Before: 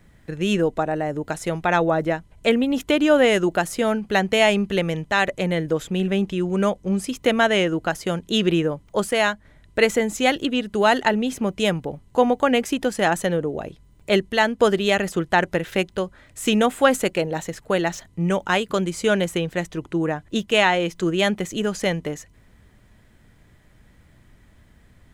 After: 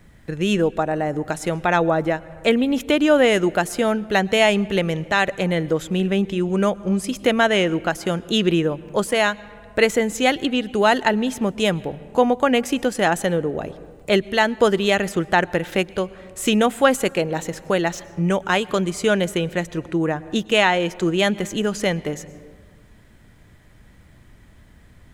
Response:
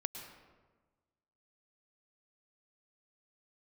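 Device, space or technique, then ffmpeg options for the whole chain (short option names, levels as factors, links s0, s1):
ducked reverb: -filter_complex "[0:a]asplit=3[s0][s1][s2];[1:a]atrim=start_sample=2205[s3];[s1][s3]afir=irnorm=-1:irlink=0[s4];[s2]apad=whole_len=1108326[s5];[s4][s5]sidechaincompress=threshold=0.0562:ratio=5:attack=5.1:release=584,volume=0.562[s6];[s0][s6]amix=inputs=2:normalize=0"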